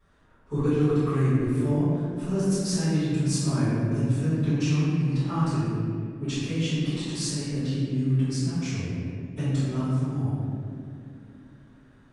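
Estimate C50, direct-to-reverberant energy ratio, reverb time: -4.5 dB, -17.5 dB, 2.6 s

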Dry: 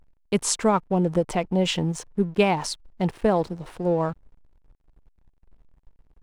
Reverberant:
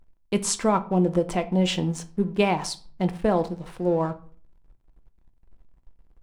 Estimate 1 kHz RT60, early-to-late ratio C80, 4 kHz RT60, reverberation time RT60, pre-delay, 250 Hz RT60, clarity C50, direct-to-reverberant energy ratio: 0.45 s, 21.5 dB, 0.30 s, 0.45 s, 3 ms, 0.50 s, 17.0 dB, 8.5 dB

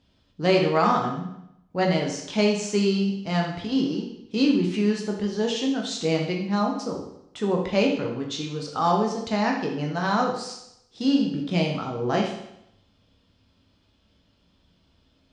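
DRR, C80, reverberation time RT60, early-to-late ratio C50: 0.0 dB, 8.0 dB, 0.80 s, 4.5 dB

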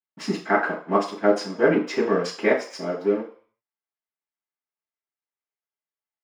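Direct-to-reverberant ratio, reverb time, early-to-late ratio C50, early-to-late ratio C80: -20.5 dB, 0.45 s, 8.0 dB, 13.0 dB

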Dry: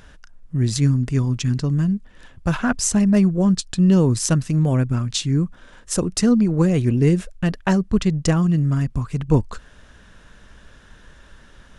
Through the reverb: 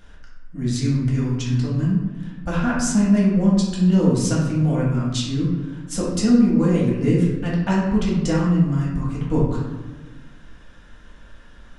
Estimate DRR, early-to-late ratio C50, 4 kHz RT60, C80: -7.0 dB, 1.0 dB, 0.70 s, 4.0 dB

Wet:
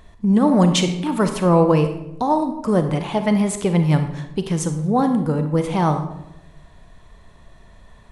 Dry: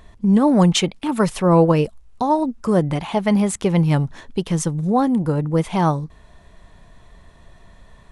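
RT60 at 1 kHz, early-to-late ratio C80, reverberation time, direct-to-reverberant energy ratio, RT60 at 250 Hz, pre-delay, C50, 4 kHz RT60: 0.80 s, 11.0 dB, 0.85 s, 7.0 dB, 1.1 s, 33 ms, 8.5 dB, 0.55 s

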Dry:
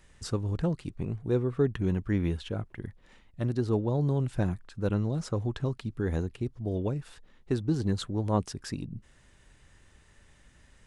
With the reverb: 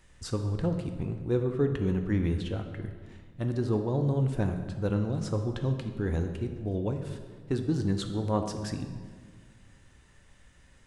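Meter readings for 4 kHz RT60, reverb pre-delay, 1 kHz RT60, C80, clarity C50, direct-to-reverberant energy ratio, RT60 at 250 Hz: 1.2 s, 3 ms, 1.6 s, 9.0 dB, 7.5 dB, 5.0 dB, 2.0 s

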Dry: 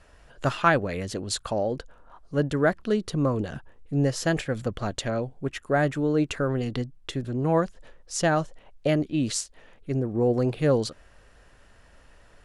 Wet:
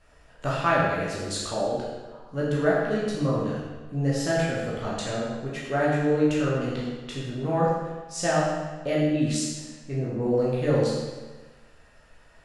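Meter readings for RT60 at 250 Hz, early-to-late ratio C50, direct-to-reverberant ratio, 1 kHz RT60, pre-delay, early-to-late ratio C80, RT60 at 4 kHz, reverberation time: 1.3 s, 0.0 dB, -7.0 dB, 1.3 s, 13 ms, 2.0 dB, 1.1 s, 1.3 s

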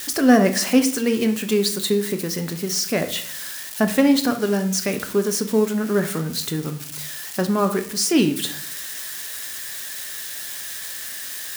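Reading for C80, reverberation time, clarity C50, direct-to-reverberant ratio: 16.0 dB, 0.60 s, 11.5 dB, 6.5 dB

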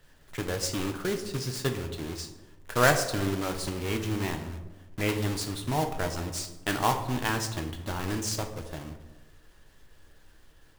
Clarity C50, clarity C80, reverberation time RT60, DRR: 9.0 dB, 11.5 dB, 1.1 s, 4.5 dB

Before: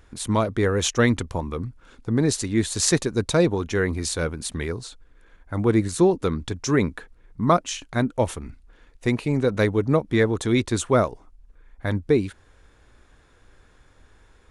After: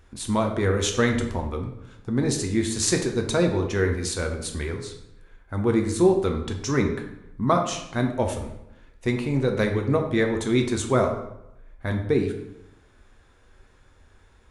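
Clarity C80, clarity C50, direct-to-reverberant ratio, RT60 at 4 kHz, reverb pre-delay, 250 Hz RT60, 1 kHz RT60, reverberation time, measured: 10.0 dB, 7.0 dB, 3.0 dB, 0.60 s, 5 ms, 0.90 s, 0.85 s, 0.85 s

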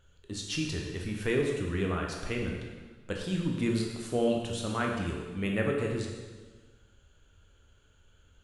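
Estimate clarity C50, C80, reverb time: 2.5 dB, 4.5 dB, 1.4 s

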